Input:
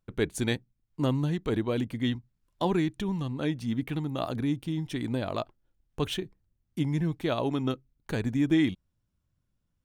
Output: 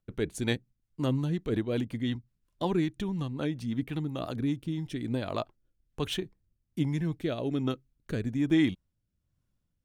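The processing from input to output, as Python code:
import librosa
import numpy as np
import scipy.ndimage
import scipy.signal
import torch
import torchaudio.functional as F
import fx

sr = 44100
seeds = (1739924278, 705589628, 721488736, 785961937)

y = fx.rotary_switch(x, sr, hz=5.5, then_hz=1.2, switch_at_s=4.24)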